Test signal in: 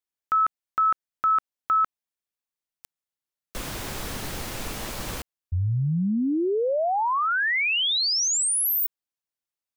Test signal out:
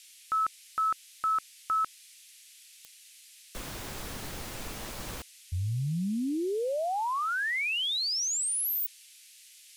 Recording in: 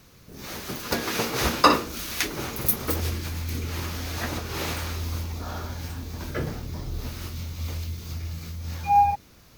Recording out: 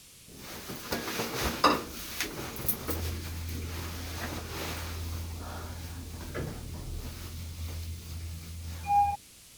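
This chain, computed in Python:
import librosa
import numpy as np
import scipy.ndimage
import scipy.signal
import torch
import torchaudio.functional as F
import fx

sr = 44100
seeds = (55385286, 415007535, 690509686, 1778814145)

y = fx.dmg_noise_band(x, sr, seeds[0], low_hz=2200.0, high_hz=12000.0, level_db=-48.0)
y = y * librosa.db_to_amplitude(-6.5)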